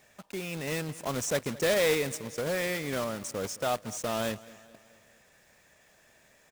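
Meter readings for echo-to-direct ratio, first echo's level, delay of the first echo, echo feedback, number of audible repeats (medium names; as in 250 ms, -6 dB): -19.0 dB, -20.5 dB, 217 ms, 53%, 3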